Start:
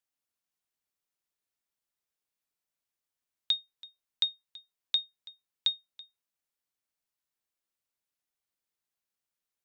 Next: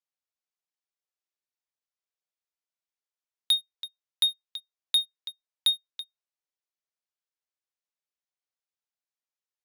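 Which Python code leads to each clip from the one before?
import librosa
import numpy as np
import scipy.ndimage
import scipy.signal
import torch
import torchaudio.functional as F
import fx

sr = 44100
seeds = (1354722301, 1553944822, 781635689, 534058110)

y = scipy.signal.sosfilt(scipy.signal.cheby1(2, 1.0, [470.0, 6400.0], 'bandpass', fs=sr, output='sos'), x)
y = fx.leveller(y, sr, passes=3)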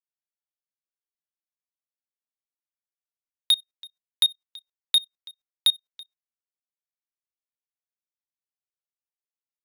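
y = fx.level_steps(x, sr, step_db=23)
y = y * 10.0 ** (6.0 / 20.0)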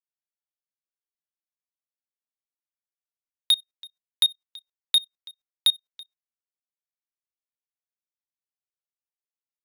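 y = x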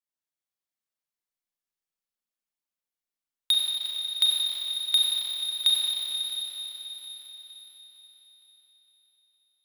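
y = fx.reverse_delay_fb(x, sr, ms=230, feedback_pct=71, wet_db=-12)
y = fx.rev_schroeder(y, sr, rt60_s=3.7, comb_ms=30, drr_db=-3.5)
y = y * 10.0 ** (-3.5 / 20.0)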